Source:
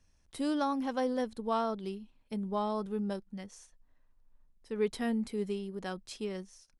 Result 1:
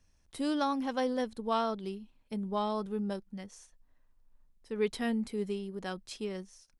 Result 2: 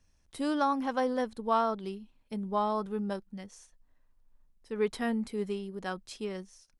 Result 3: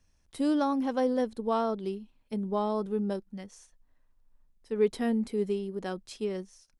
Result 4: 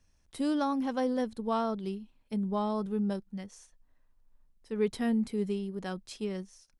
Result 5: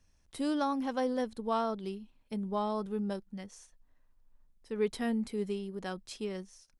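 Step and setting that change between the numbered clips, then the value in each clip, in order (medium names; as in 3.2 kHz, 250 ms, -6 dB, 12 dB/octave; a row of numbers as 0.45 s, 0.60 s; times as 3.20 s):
dynamic bell, frequency: 3.2 kHz, 1.2 kHz, 370 Hz, 140 Hz, 9.8 kHz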